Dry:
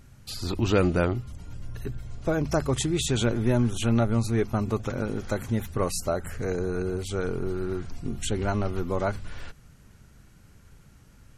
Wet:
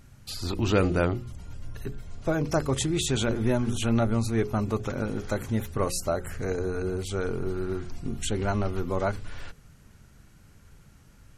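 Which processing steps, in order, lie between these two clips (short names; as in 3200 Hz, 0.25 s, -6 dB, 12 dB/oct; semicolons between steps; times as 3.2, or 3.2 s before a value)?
notches 60/120/180/240/300/360/420/480/540 Hz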